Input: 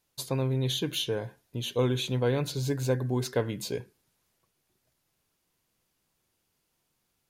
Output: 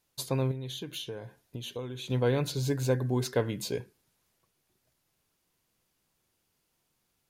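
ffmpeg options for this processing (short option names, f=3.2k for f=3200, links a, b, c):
-filter_complex "[0:a]asettb=1/sr,asplit=3[a][b][c];[a]atrim=end=0.514[d];[b]atrim=start=0.51:end=2.1,asetpts=PTS-STARTPTS,afade=t=in:d=0.004:c=qsin,afade=t=out:st=1.586:d=0.004:c=qsin,acompressor=threshold=-36dB:ratio=6[e];[c]atrim=start=2.096[f];[d][e]acrossfade=d=0.004:c1=hsin:c2=qsin[g];[g][f]acrossfade=d=0.004:c1=qsin:c2=hsin"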